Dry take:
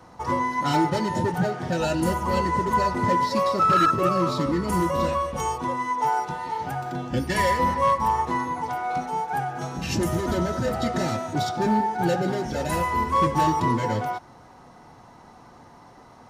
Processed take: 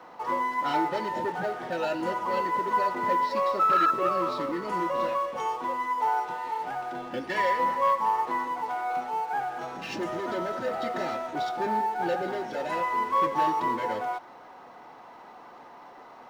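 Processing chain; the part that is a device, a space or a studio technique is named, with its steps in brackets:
phone line with mismatched companding (band-pass filter 390–3,200 Hz; mu-law and A-law mismatch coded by mu)
level −3 dB

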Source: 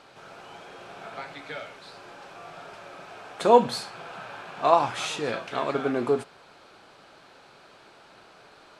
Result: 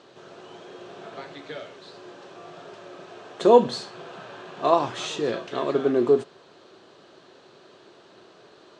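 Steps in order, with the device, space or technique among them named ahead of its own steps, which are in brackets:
car door speaker (loudspeaker in its box 100–7,200 Hz, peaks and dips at 370 Hz +8 dB, 830 Hz −7 dB, 1,400 Hz −7 dB, 2,300 Hz −9 dB, 5,000 Hz −4 dB)
level +2 dB

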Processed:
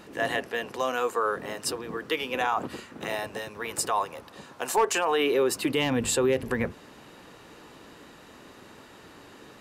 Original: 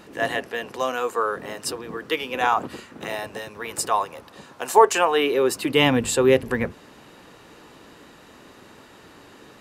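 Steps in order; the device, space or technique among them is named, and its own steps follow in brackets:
clipper into limiter (hard clipping −7 dBFS, distortion −21 dB; brickwall limiter −14 dBFS, peak gain reduction 7 dB)
level −1.5 dB

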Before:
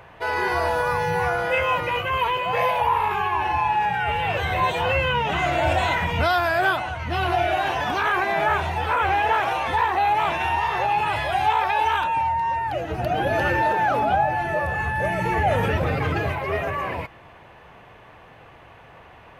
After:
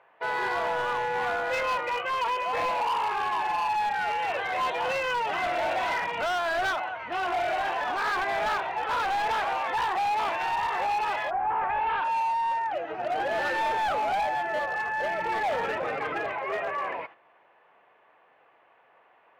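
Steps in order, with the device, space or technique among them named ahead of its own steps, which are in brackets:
walkie-talkie (band-pass filter 450–2,500 Hz; hard clipping −21.5 dBFS, distortion −12 dB; noise gate −42 dBFS, range −9 dB)
0:11.29–0:12.04: low-pass filter 1,300 Hz → 3,400 Hz 24 dB per octave
level −2.5 dB

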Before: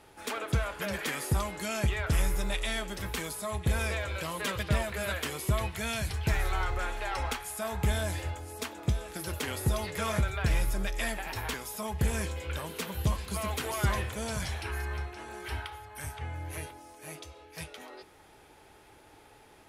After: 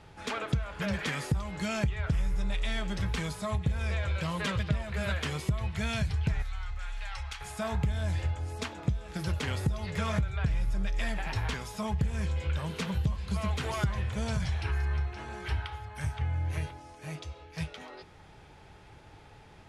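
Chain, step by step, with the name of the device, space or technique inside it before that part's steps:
jukebox (low-pass filter 6,100 Hz 12 dB per octave; low shelf with overshoot 220 Hz +7.5 dB, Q 1.5; downward compressor 5 to 1, threshold −28 dBFS, peak gain reduction 13 dB)
0:06.42–0:07.41: guitar amp tone stack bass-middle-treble 10-0-10
level +1.5 dB

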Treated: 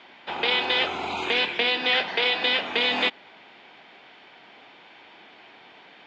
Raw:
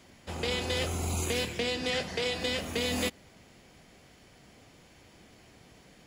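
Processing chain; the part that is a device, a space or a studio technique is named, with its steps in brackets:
phone earpiece (loudspeaker in its box 400–3,700 Hz, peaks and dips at 520 Hz −5 dB, 880 Hz +7 dB, 1,500 Hz +4 dB, 2,400 Hz +4 dB, 3,500 Hz +6 dB)
level +8 dB

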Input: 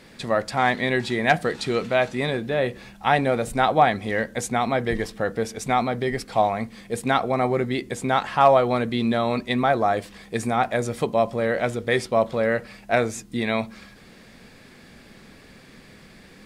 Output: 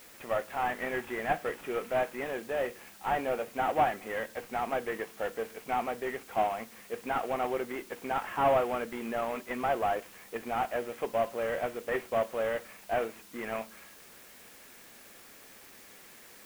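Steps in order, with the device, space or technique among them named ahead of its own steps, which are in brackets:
army field radio (band-pass filter 380–3,200 Hz; variable-slope delta modulation 16 kbit/s; white noise bed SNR 21 dB)
level −6 dB

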